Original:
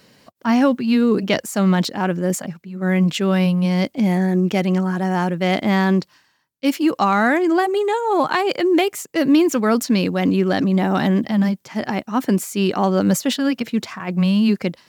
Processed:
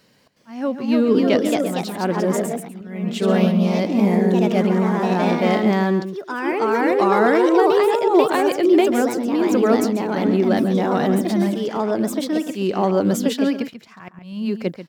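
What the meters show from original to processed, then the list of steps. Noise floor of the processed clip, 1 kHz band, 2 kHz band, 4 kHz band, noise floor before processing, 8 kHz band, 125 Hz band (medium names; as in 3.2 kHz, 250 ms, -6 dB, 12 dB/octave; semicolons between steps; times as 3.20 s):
-46 dBFS, 0.0 dB, -2.5 dB, -4.0 dB, -60 dBFS, -4.0 dB, -3.5 dB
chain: slow attack 460 ms; echo from a far wall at 24 m, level -10 dB; ever faster or slower copies 365 ms, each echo +2 st, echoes 2; dynamic bell 450 Hz, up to +7 dB, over -29 dBFS, Q 0.71; trim -5.5 dB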